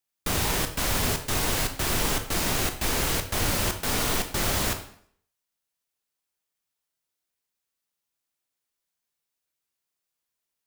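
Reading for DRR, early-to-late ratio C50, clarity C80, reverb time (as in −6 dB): 6.5 dB, 10.0 dB, 13.5 dB, 0.60 s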